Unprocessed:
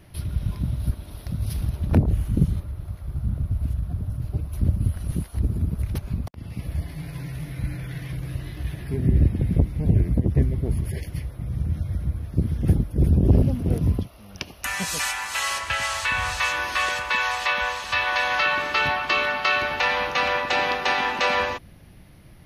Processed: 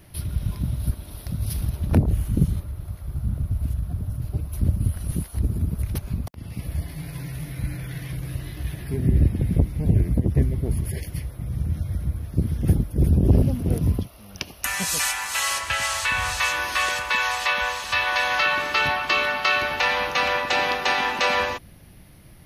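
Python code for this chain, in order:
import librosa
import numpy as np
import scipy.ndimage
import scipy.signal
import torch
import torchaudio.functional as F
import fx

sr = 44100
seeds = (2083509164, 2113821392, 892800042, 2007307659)

y = fx.high_shelf(x, sr, hz=7000.0, db=8.5)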